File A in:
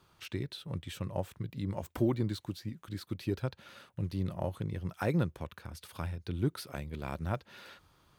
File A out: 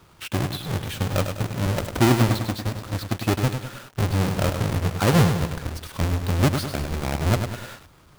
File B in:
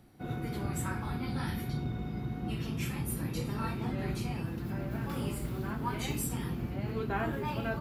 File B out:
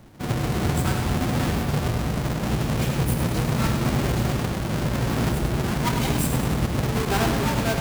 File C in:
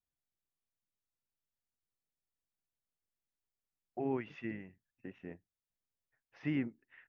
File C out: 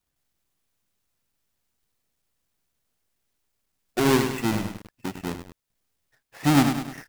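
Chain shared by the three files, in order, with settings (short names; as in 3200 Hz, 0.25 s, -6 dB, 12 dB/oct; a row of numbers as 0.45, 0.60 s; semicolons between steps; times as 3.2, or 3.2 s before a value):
half-waves squared off; lo-fi delay 0.101 s, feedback 55%, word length 8-bit, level -6.5 dB; match loudness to -24 LUFS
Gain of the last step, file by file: +7.5, +6.0, +11.5 dB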